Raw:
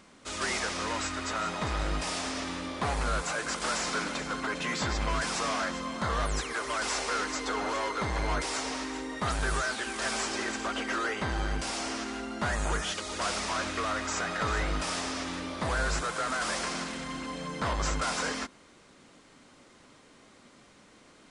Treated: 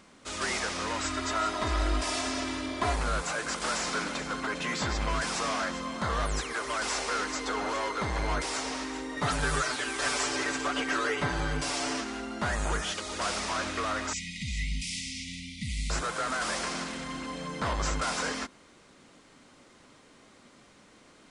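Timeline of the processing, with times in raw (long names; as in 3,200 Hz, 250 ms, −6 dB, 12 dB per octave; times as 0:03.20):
0:01.04–0:02.96: comb filter 3 ms, depth 77%
0:09.16–0:12.01: comb filter 6.9 ms, depth 90%
0:14.13–0:15.90: linear-phase brick-wall band-stop 260–1,900 Hz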